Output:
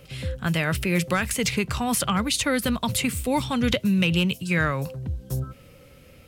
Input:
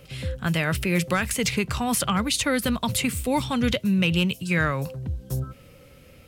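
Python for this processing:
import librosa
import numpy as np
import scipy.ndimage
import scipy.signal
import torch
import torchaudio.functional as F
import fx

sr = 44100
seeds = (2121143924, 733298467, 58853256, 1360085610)

y = fx.band_squash(x, sr, depth_pct=70, at=(3.72, 4.38))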